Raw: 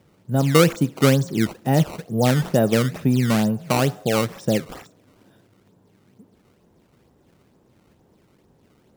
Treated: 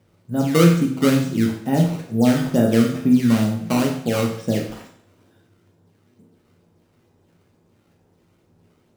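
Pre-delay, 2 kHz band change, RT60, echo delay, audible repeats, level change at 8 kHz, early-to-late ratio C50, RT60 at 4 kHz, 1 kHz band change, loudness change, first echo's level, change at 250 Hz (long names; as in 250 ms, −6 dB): 8 ms, −2.0 dB, 0.65 s, no echo audible, no echo audible, −2.0 dB, 6.5 dB, 0.60 s, −2.5 dB, +1.5 dB, no echo audible, +4.0 dB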